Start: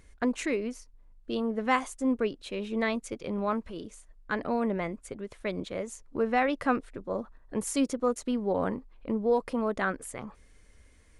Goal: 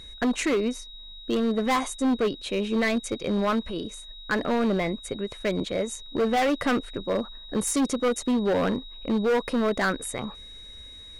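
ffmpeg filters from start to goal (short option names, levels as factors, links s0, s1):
-af "aeval=exprs='val(0)+0.00316*sin(2*PI*3800*n/s)':c=same,asoftclip=type=hard:threshold=0.0447,volume=2.37"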